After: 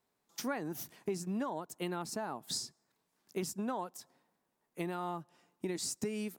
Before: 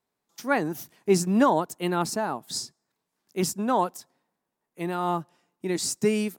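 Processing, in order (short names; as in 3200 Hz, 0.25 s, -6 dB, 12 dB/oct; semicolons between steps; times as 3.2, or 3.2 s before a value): compressor 10:1, threshold -35 dBFS, peak gain reduction 20 dB; gain +1 dB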